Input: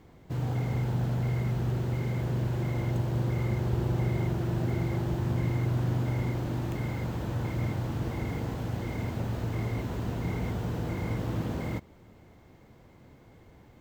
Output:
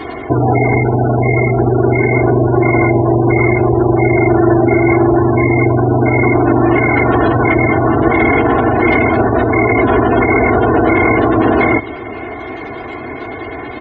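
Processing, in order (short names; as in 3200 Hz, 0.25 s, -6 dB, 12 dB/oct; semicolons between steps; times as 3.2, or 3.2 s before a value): compressor 6:1, threshold -34 dBFS, peak gain reduction 11 dB; spectral gate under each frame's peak -30 dB strong; HPF 470 Hz 6 dB/oct; comb 2.8 ms, depth 95%; reverb RT60 0.45 s, pre-delay 5 ms, DRR 17 dB; maximiser +34 dB; gain -1 dB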